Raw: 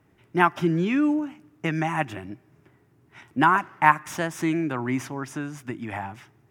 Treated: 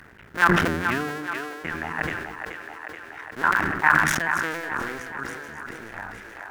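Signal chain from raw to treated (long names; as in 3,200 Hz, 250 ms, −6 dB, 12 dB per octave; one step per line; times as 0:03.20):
sub-harmonics by changed cycles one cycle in 2, muted
on a send: echo with a time of its own for lows and highs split 350 Hz, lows 98 ms, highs 429 ms, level −7.5 dB
on the sum: upward compression, threshold −29 dBFS
parametric band 1,600 Hz +14.5 dB 0.76 octaves
level that may fall only so fast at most 37 dB per second
level −8 dB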